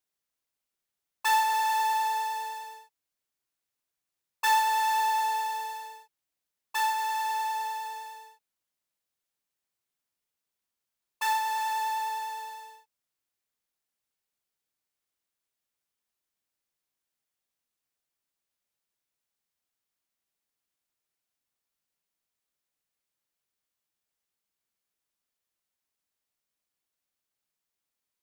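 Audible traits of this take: noise floor -87 dBFS; spectral tilt -3.5 dB/oct

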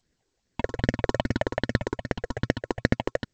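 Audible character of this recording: tremolo triangle 1.8 Hz, depth 40%; aliases and images of a low sample rate 1200 Hz, jitter 0%; phasing stages 6, 2.5 Hz, lowest notch 160–1000 Hz; G.722

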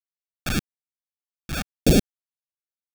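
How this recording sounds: aliases and images of a low sample rate 1000 Hz, jitter 0%; phasing stages 2, 1.7 Hz, lowest notch 380–1200 Hz; a quantiser's noise floor 8-bit, dither none; noise-modulated level

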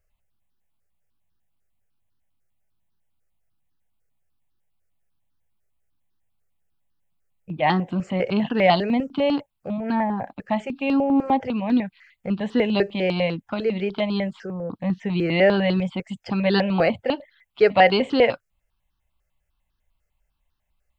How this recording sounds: notches that jump at a steady rate 10 Hz 980–2200 Hz

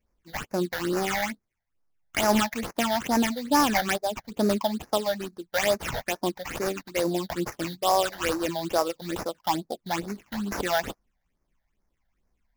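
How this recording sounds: aliases and images of a low sample rate 4200 Hz, jitter 20%; phasing stages 8, 2.3 Hz, lowest notch 330–3200 Hz

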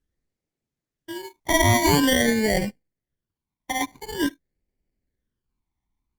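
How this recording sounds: aliases and images of a low sample rate 1300 Hz, jitter 0%; phasing stages 12, 0.47 Hz, lowest notch 490–1200 Hz; Opus

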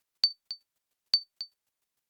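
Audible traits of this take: chopped level 6.6 Hz, depth 65%, duty 15%; Opus

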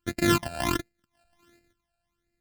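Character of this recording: a buzz of ramps at a fixed pitch in blocks of 128 samples; phasing stages 12, 1.4 Hz, lowest notch 340–1100 Hz

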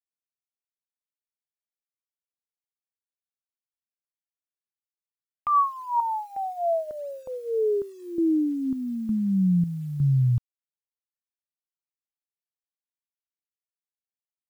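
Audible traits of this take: chopped level 1.1 Hz, depth 65%, duty 60%; phasing stages 6, 1.6 Hz, lowest notch 410–1100 Hz; a quantiser's noise floor 10-bit, dither none

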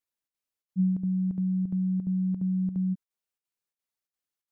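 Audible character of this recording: chopped level 2.9 Hz, depth 65%, duty 80%

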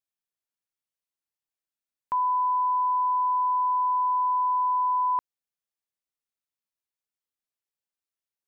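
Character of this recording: noise floor -93 dBFS; spectral tilt -2.5 dB/oct

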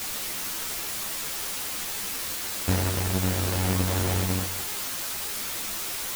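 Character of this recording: aliases and images of a low sample rate 1200 Hz, jitter 20%; random-step tremolo 2.7 Hz, depth 65%; a quantiser's noise floor 6-bit, dither triangular; a shimmering, thickened sound

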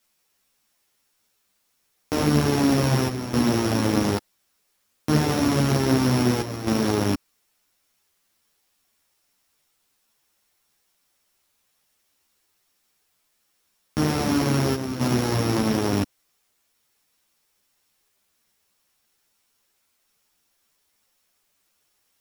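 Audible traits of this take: a buzz of ramps at a fixed pitch in blocks of 8 samples; chopped level 0.6 Hz, depth 65%, duty 85%; a quantiser's noise floor 12-bit, dither triangular; a shimmering, thickened sound

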